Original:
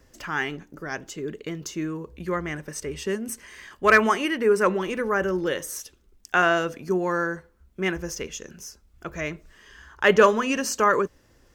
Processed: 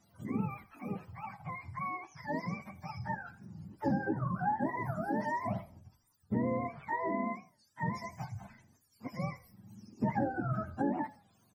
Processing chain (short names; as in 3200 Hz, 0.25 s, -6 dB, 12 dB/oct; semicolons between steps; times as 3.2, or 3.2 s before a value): spectrum mirrored in octaves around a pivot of 590 Hz; compressor 6:1, threshold -21 dBFS, peak gain reduction 10.5 dB; on a send: frequency-shifting echo 81 ms, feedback 34%, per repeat -31 Hz, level -19 dB; on the sum: record warp 45 rpm, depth 160 cents; gain -7 dB